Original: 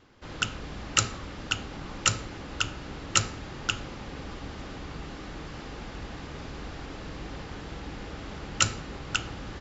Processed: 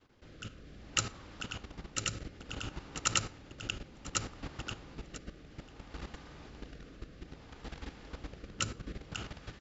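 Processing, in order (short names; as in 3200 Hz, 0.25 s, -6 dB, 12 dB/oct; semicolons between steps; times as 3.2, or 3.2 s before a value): feedback echo 0.994 s, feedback 18%, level -3 dB; level quantiser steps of 12 dB; rotary speaker horn 0.6 Hz; gain -2 dB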